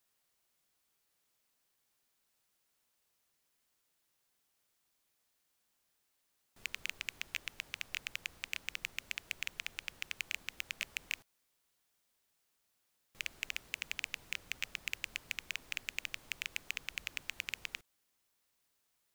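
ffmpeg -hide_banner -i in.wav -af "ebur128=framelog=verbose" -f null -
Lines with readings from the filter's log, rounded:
Integrated loudness:
  I:         -41.3 LUFS
  Threshold: -51.4 LUFS
Loudness range:
  LRA:         4.7 LU
  Threshold: -62.5 LUFS
  LRA low:   -45.5 LUFS
  LRA high:  -40.8 LUFS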